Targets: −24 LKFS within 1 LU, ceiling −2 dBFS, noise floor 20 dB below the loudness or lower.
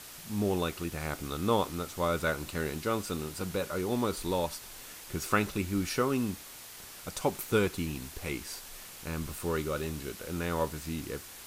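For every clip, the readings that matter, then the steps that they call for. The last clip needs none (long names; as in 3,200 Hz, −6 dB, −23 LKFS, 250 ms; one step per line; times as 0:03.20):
background noise floor −48 dBFS; target noise floor −53 dBFS; integrated loudness −33.0 LKFS; sample peak −13.0 dBFS; target loudness −24.0 LKFS
→ broadband denoise 6 dB, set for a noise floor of −48 dBFS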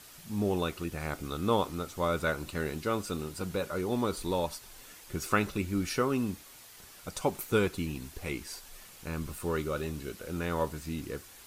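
background noise floor −52 dBFS; target noise floor −53 dBFS
→ broadband denoise 6 dB, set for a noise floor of −52 dBFS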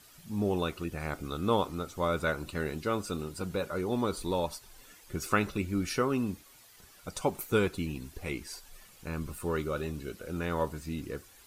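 background noise floor −57 dBFS; integrated loudness −33.0 LKFS; sample peak −13.0 dBFS; target loudness −24.0 LKFS
→ level +9 dB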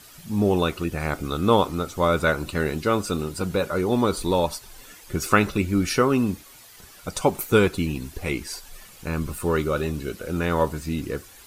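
integrated loudness −24.0 LKFS; sample peak −4.0 dBFS; background noise floor −48 dBFS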